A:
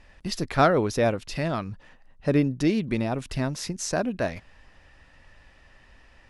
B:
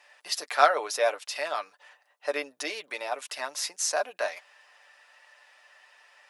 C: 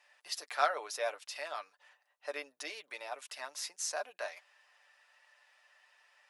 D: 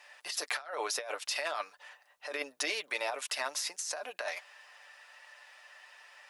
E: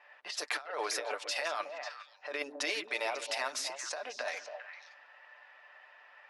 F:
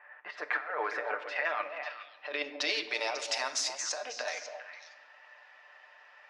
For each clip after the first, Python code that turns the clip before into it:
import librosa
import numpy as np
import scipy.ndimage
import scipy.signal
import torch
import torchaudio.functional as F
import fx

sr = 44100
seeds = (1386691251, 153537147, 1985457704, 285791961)

y1 = scipy.signal.sosfilt(scipy.signal.butter(4, 600.0, 'highpass', fs=sr, output='sos'), x)
y1 = fx.high_shelf(y1, sr, hz=8400.0, db=8.0)
y1 = y1 + 0.51 * np.pad(y1, (int(6.8 * sr / 1000.0), 0))[:len(y1)]
y2 = fx.low_shelf(y1, sr, hz=380.0, db=-7.5)
y2 = y2 * 10.0 ** (-8.5 / 20.0)
y3 = fx.over_compress(y2, sr, threshold_db=-43.0, ratio=-1.0)
y3 = y3 * 10.0 ** (6.5 / 20.0)
y4 = fx.high_shelf(y3, sr, hz=10000.0, db=-6.0)
y4 = fx.env_lowpass(y4, sr, base_hz=1800.0, full_db=-31.5)
y4 = fx.echo_stepped(y4, sr, ms=136, hz=250.0, octaves=1.4, feedback_pct=70, wet_db=-2.0)
y5 = fx.filter_sweep_lowpass(y4, sr, from_hz=1700.0, to_hz=6600.0, start_s=1.17, end_s=3.37, q=2.1)
y5 = fx.room_shoebox(y5, sr, seeds[0], volume_m3=630.0, walls='mixed', distance_m=0.46)